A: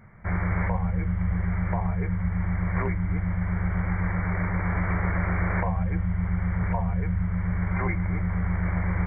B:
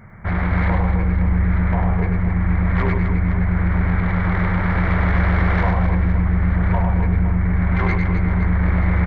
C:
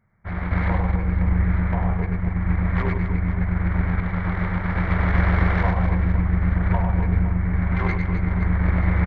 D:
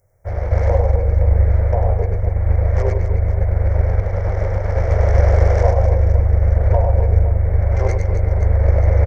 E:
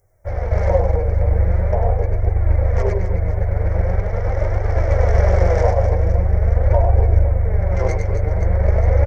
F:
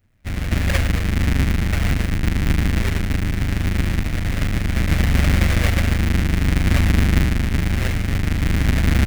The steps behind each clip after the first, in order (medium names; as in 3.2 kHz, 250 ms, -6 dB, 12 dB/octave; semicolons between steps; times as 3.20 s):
saturation -22 dBFS, distortion -15 dB; on a send: reverse bouncing-ball echo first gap 100 ms, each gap 1.6×, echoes 5; on the sum: trim +8 dB
upward expansion 2.5:1, over -30 dBFS
FFT filter 110 Hz 0 dB, 210 Hz -24 dB, 530 Hz +10 dB, 1.1 kHz -13 dB, 2 kHz -12 dB, 3.9 kHz -14 dB, 5.6 kHz +13 dB; trim +7 dB
flange 0.43 Hz, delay 2.4 ms, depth 4.8 ms, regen +40%; trim +4.5 dB
square wave that keeps the level; graphic EQ 125/250/500/1000/2000 Hz +4/+5/-7/-6/+9 dB; trim -8 dB